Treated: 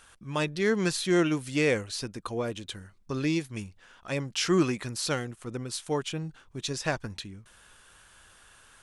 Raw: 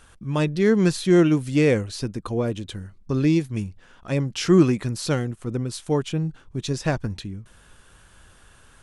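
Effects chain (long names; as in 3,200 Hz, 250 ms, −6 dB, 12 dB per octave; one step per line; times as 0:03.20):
low-shelf EQ 490 Hz −11.5 dB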